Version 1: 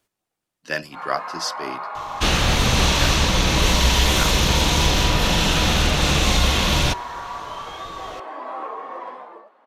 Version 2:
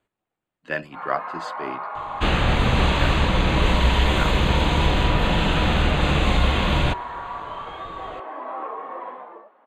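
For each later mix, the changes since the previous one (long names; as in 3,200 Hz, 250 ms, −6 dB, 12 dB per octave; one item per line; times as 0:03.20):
master: add moving average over 8 samples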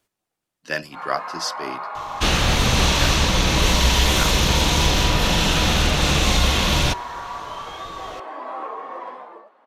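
master: remove moving average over 8 samples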